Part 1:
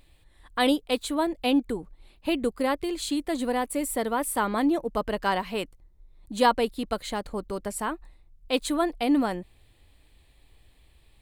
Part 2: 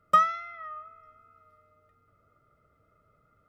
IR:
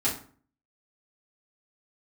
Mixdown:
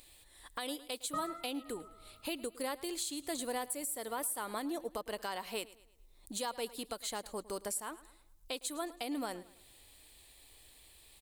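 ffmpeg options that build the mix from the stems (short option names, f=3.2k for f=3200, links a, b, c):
-filter_complex "[0:a]bass=f=250:g=-10,treble=f=4k:g=13,acompressor=threshold=-48dB:ratio=1.5,volume=0dB,asplit=3[a][b][c];[b]volume=-19dB[d];[1:a]tiltshelf=f=970:g=9.5,adelay=1000,volume=-5dB,asplit=2[e][f];[f]volume=-20dB[g];[c]apad=whole_len=197938[h];[e][h]sidechaincompress=threshold=-40dB:ratio=8:attack=16:release=433[i];[2:a]atrim=start_sample=2205[j];[g][j]afir=irnorm=-1:irlink=0[k];[d]aecho=0:1:108|216|324|432|540:1|0.38|0.144|0.0549|0.0209[l];[a][i][k][l]amix=inputs=4:normalize=0,alimiter=level_in=2dB:limit=-24dB:level=0:latency=1:release=339,volume=-2dB"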